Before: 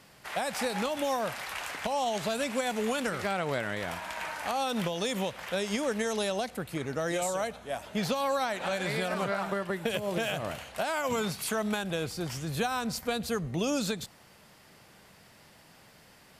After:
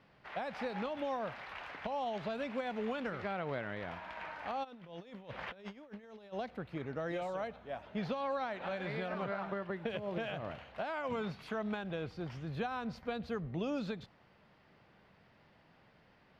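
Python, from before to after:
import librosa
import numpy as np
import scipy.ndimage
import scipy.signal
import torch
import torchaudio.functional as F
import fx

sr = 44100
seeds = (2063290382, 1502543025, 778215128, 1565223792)

y = fx.over_compress(x, sr, threshold_db=-38.0, ratio=-0.5, at=(4.63, 6.32), fade=0.02)
y = fx.air_absorb(y, sr, metres=300.0)
y = y * 10.0 ** (-6.0 / 20.0)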